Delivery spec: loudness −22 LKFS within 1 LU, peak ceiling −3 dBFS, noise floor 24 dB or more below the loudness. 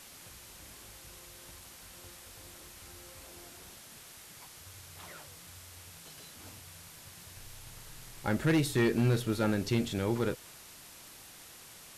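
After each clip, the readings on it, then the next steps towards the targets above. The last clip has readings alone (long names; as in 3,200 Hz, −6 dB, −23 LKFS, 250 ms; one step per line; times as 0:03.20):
share of clipped samples 0.7%; peaks flattened at −21.5 dBFS; background noise floor −52 dBFS; target noise floor −55 dBFS; integrated loudness −30.5 LKFS; sample peak −21.5 dBFS; target loudness −22.0 LKFS
→ clipped peaks rebuilt −21.5 dBFS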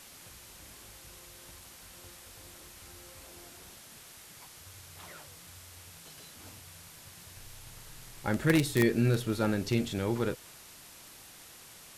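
share of clipped samples 0.0%; background noise floor −52 dBFS; target noise floor −54 dBFS
→ noise reduction from a noise print 6 dB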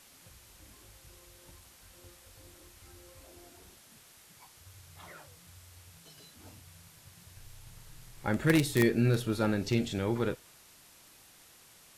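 background noise floor −58 dBFS; integrated loudness −29.5 LKFS; sample peak −12.5 dBFS; target loudness −22.0 LKFS
→ level +7.5 dB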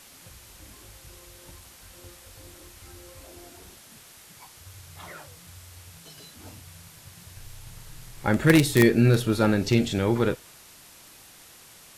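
integrated loudness −22.0 LKFS; sample peak −5.0 dBFS; background noise floor −51 dBFS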